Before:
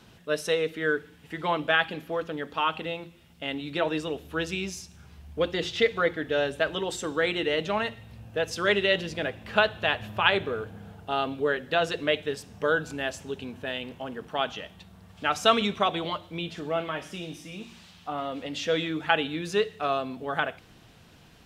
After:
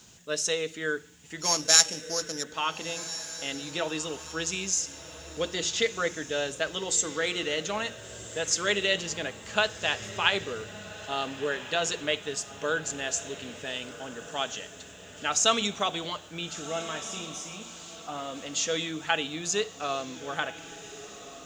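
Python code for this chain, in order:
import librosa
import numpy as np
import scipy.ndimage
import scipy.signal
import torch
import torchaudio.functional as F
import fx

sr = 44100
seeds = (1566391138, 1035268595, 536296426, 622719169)

p1 = fx.sample_sort(x, sr, block=8, at=(1.4, 2.42), fade=0.02)
p2 = fx.lowpass_res(p1, sr, hz=6900.0, q=7.2)
p3 = fx.high_shelf(p2, sr, hz=3900.0, db=9.0)
p4 = fx.dmg_noise_colour(p3, sr, seeds[0], colour='violet', level_db=-67.0)
p5 = p4 + fx.echo_diffused(p4, sr, ms=1445, feedback_pct=46, wet_db=-14, dry=0)
y = p5 * 10.0 ** (-5.0 / 20.0)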